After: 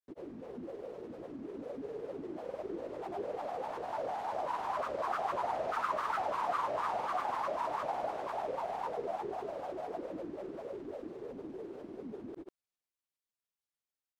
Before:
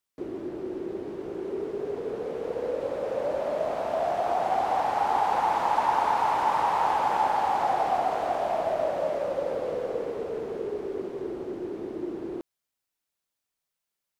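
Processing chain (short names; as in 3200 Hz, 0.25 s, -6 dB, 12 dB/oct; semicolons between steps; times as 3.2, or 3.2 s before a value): grains, pitch spread up and down by 7 st; gain -9 dB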